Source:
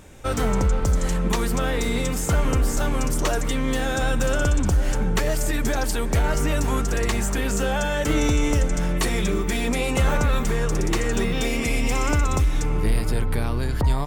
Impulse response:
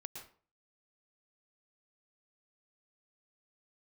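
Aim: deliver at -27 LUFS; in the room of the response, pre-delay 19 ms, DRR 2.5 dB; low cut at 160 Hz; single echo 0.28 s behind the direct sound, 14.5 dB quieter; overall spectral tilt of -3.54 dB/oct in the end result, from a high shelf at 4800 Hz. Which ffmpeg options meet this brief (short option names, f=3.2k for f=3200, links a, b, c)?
-filter_complex "[0:a]highpass=160,highshelf=f=4.8k:g=8.5,aecho=1:1:280:0.188,asplit=2[a][b];[1:a]atrim=start_sample=2205,adelay=19[c];[b][c]afir=irnorm=-1:irlink=0,volume=1dB[d];[a][d]amix=inputs=2:normalize=0,volume=-4.5dB"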